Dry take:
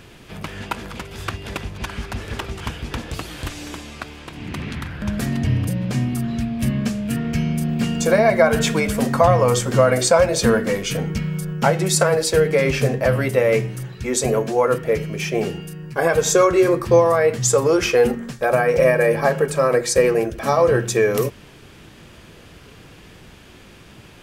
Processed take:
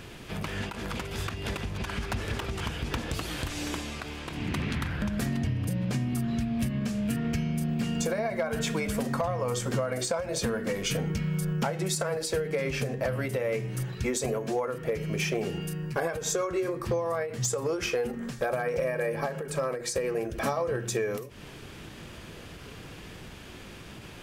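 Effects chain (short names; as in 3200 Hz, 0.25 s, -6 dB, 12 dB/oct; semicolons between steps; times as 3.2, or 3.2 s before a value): compressor 16:1, threshold -25 dBFS, peak gain reduction 17 dB; hard clip -20 dBFS, distortion -27 dB; ending taper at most 110 dB/s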